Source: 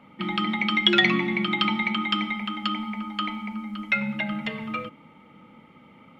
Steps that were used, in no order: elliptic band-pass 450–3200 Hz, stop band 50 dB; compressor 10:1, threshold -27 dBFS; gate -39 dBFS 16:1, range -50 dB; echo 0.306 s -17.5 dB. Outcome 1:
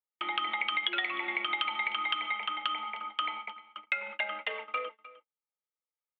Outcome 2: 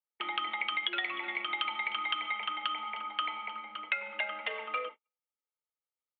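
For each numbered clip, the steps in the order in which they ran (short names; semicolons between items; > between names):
elliptic band-pass > gate > compressor > echo; echo > gate > compressor > elliptic band-pass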